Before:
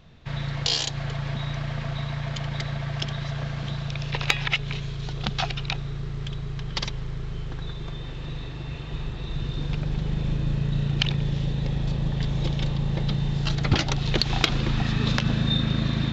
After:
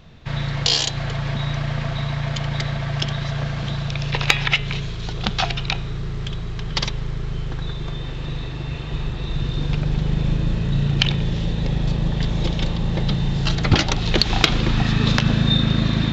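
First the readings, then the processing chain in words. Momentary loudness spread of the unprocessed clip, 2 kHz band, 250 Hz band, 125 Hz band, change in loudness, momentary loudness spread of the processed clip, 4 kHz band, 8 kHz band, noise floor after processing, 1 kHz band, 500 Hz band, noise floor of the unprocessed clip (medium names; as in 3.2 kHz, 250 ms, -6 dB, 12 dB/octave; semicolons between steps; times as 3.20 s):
11 LU, +6.0 dB, +5.5 dB, +4.5 dB, +5.0 dB, 11 LU, +6.0 dB, no reading, -28 dBFS, +6.0 dB, +6.0 dB, -34 dBFS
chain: de-hum 137.8 Hz, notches 29; trim +6 dB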